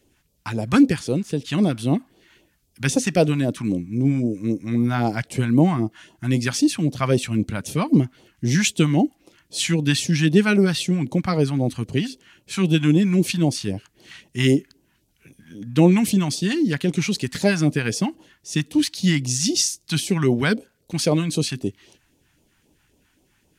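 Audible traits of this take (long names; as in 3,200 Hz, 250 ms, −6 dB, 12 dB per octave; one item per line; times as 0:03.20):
phaser sweep stages 2, 3.8 Hz, lowest notch 420–1,600 Hz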